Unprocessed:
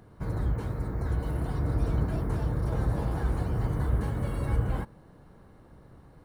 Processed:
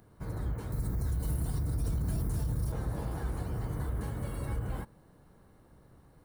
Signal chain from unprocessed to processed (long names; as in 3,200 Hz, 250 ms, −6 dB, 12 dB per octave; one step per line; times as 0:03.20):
0:00.72–0:02.72: bass and treble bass +9 dB, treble +13 dB
brickwall limiter −19 dBFS, peak gain reduction 11 dB
high-shelf EQ 6,800 Hz +11.5 dB
level −6 dB